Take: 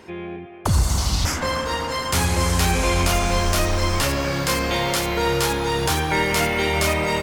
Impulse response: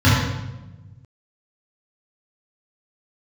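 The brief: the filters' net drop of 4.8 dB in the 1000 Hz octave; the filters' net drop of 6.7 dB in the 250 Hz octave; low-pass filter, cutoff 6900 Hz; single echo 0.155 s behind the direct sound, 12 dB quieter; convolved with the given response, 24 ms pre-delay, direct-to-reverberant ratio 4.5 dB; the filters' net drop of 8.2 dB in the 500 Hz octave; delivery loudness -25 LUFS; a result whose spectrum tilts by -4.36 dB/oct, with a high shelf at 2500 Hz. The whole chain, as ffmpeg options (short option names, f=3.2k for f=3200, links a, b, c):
-filter_complex "[0:a]lowpass=6.9k,equalizer=f=250:t=o:g=-8,equalizer=f=500:t=o:g=-7,equalizer=f=1k:t=o:g=-4.5,highshelf=f=2.5k:g=6.5,aecho=1:1:155:0.251,asplit=2[a][b];[1:a]atrim=start_sample=2205,adelay=24[c];[b][c]afir=irnorm=-1:irlink=0,volume=-28dB[d];[a][d]amix=inputs=2:normalize=0,volume=-10.5dB"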